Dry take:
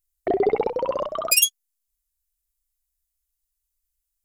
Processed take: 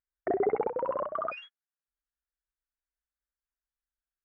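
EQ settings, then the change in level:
high-pass filter 85 Hz 6 dB per octave
transistor ladder low-pass 1,800 Hz, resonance 60%
high-frequency loss of the air 260 metres
+4.0 dB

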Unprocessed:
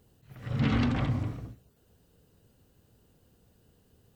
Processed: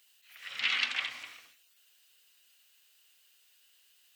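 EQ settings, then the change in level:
high-pass with resonance 2,500 Hz, resonance Q 1.7
+7.0 dB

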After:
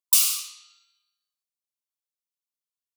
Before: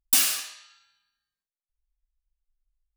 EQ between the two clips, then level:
four-pole ladder high-pass 280 Hz, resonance 25%
linear-phase brick-wall band-stop 360–1,000 Hz
phaser with its sweep stopped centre 700 Hz, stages 4
+8.5 dB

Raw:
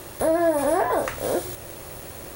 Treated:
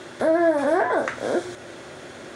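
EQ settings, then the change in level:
dynamic equaliser 3,100 Hz, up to −5 dB, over −51 dBFS, Q 1.9
loudspeaker in its box 130–7,600 Hz, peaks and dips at 240 Hz +7 dB, 360 Hz +5 dB, 640 Hz +3 dB, 1,500 Hz +10 dB, 2,100 Hz +5 dB, 3,400 Hz +8 dB
−2.0 dB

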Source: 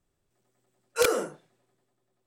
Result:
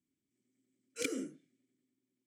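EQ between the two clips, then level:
formant filter i
parametric band 110 Hz +6.5 dB 2.6 octaves
high shelf with overshoot 4,900 Hz +13 dB, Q 1.5
+3.0 dB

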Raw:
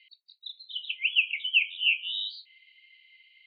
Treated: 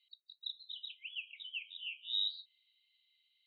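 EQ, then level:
resonant band-pass 3,800 Hz, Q 17
+1.5 dB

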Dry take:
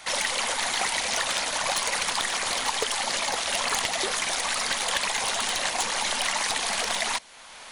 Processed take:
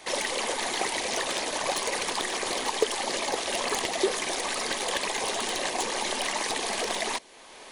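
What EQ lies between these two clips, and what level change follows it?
parametric band 370 Hz +14.5 dB 1.1 octaves
notch filter 1,400 Hz, Q 9.4
−4.0 dB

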